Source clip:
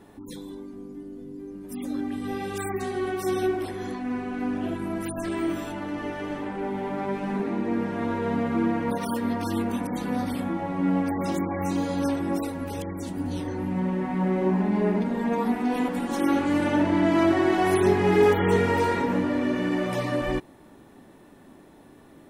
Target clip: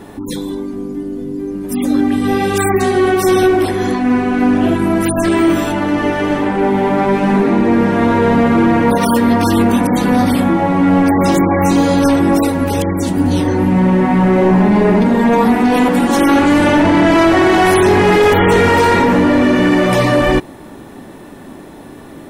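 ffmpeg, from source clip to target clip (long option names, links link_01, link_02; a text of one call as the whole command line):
ffmpeg -i in.wav -af "apsyclip=22.5dB,volume=-6dB" out.wav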